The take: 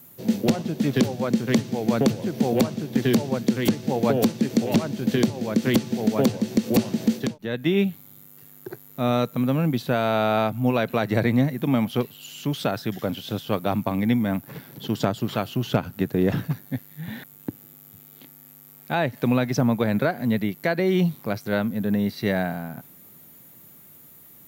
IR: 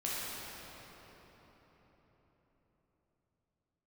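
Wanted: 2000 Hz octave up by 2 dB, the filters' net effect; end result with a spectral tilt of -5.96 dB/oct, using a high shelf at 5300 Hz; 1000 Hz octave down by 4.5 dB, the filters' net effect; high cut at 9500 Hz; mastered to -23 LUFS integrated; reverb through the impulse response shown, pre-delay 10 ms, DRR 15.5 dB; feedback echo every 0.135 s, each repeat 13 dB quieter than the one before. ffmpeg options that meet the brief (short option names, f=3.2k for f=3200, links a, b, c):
-filter_complex "[0:a]lowpass=9.5k,equalizer=f=1k:t=o:g=-8.5,equalizer=f=2k:t=o:g=6,highshelf=f=5.3k:g=-5,aecho=1:1:135|270|405:0.224|0.0493|0.0108,asplit=2[a][b];[1:a]atrim=start_sample=2205,adelay=10[c];[b][c]afir=irnorm=-1:irlink=0,volume=-21dB[d];[a][d]amix=inputs=2:normalize=0,volume=1dB"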